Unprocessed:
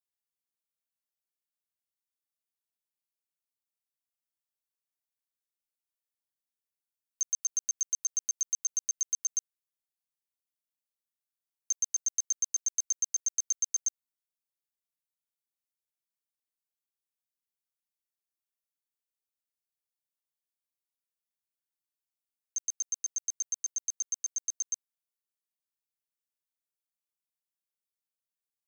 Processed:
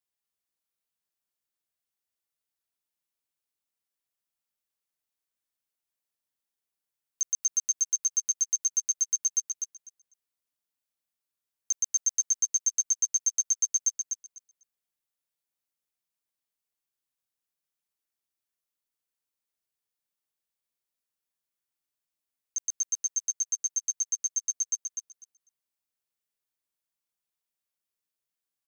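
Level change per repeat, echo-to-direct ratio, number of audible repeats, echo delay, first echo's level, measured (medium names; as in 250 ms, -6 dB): -16.0 dB, -5.0 dB, 2, 249 ms, -5.0 dB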